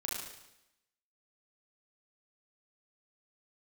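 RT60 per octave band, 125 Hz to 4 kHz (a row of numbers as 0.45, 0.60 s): 0.85, 0.90, 0.90, 0.85, 0.90, 0.90 s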